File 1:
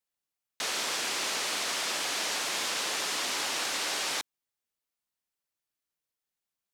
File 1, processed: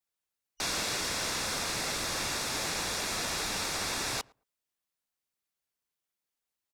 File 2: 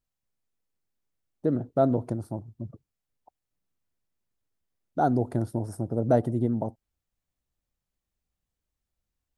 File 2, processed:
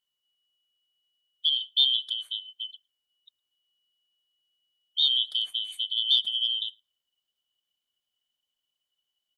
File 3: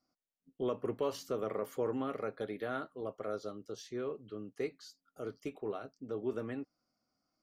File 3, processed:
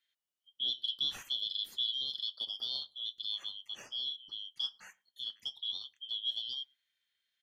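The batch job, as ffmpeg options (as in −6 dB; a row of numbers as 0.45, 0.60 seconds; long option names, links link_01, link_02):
-filter_complex "[0:a]afftfilt=real='real(if(lt(b,272),68*(eq(floor(b/68),0)*2+eq(floor(b/68),1)*3+eq(floor(b/68),2)*0+eq(floor(b/68),3)*1)+mod(b,68),b),0)':imag='imag(if(lt(b,272),68*(eq(floor(b/68),0)*2+eq(floor(b/68),1)*3+eq(floor(b/68),2)*0+eq(floor(b/68),3)*1)+mod(b,68),b),0)':win_size=2048:overlap=0.75,adynamicequalizer=threshold=0.02:dfrequency=4200:dqfactor=0.71:tfrequency=4200:tqfactor=0.71:attack=5:release=100:ratio=0.375:range=1.5:mode=cutabove:tftype=bell,asplit=2[link_01][link_02];[link_02]adelay=111,lowpass=frequency=1200:poles=1,volume=-23.5dB,asplit=2[link_03][link_04];[link_04]adelay=111,lowpass=frequency=1200:poles=1,volume=0.15[link_05];[link_01][link_03][link_05]amix=inputs=3:normalize=0"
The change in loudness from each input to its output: −1.5, +3.0, +3.5 LU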